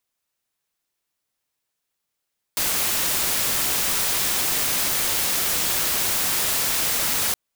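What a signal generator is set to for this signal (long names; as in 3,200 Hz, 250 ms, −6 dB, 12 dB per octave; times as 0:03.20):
noise white, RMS −22.5 dBFS 4.77 s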